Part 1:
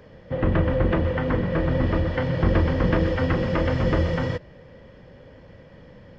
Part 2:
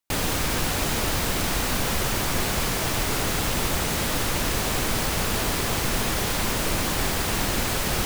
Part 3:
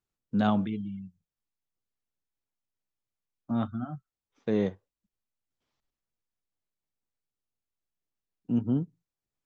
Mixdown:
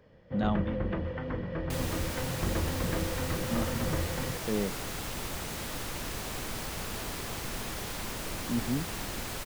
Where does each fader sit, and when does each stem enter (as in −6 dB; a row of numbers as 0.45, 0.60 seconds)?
−11.5, −12.0, −4.5 decibels; 0.00, 1.60, 0.00 seconds